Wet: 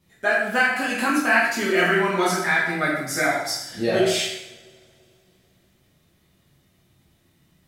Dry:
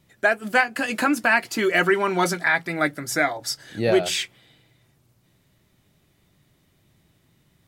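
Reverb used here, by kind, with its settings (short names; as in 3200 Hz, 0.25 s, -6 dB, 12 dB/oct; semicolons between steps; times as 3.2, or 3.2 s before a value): two-slope reverb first 0.75 s, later 3.2 s, from -28 dB, DRR -7 dB; gain -7 dB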